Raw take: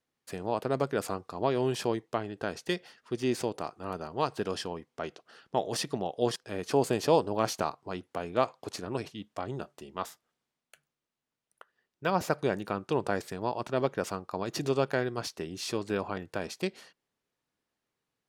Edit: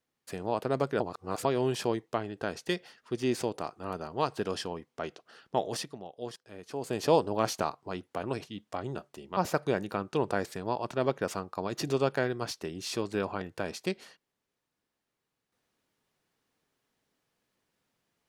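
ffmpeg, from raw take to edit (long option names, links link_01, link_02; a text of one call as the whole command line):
ffmpeg -i in.wav -filter_complex "[0:a]asplit=7[link_01][link_02][link_03][link_04][link_05][link_06][link_07];[link_01]atrim=end=1.002[link_08];[link_02]atrim=start=0.998:end=1.452,asetpts=PTS-STARTPTS,areverse[link_09];[link_03]atrim=start=1.448:end=5.94,asetpts=PTS-STARTPTS,afade=type=out:start_time=4.212:duration=0.28:silence=0.281838[link_10];[link_04]atrim=start=5.94:end=6.8,asetpts=PTS-STARTPTS,volume=-11dB[link_11];[link_05]atrim=start=6.8:end=8.232,asetpts=PTS-STARTPTS,afade=type=in:duration=0.28:silence=0.281838[link_12];[link_06]atrim=start=8.868:end=10.012[link_13];[link_07]atrim=start=12.128[link_14];[link_08][link_09]acrossfade=duration=0.004:curve1=hsin:curve2=hsin[link_15];[link_10][link_11][link_12]concat=n=3:v=0:a=1[link_16];[link_15][link_16]acrossfade=duration=0.004:curve1=hsin:curve2=hsin[link_17];[link_17][link_13]acrossfade=duration=0.004:curve1=hsin:curve2=hsin[link_18];[link_18][link_14]acrossfade=duration=0.004:curve1=hsin:curve2=hsin" out.wav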